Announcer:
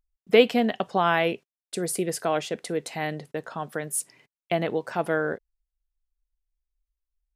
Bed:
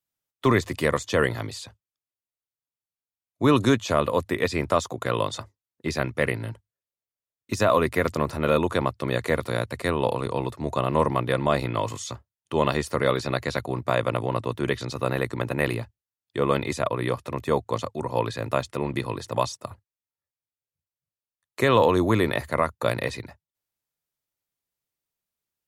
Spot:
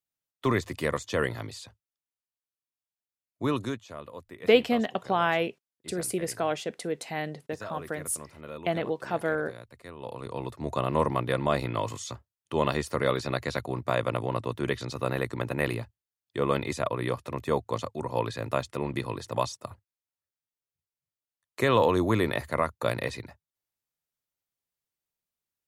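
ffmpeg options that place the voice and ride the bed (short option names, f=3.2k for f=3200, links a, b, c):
-filter_complex "[0:a]adelay=4150,volume=-3dB[a];[1:a]volume=10.5dB,afade=t=out:st=3.26:d=0.61:silence=0.199526,afade=t=in:st=9.97:d=0.75:silence=0.158489[b];[a][b]amix=inputs=2:normalize=0"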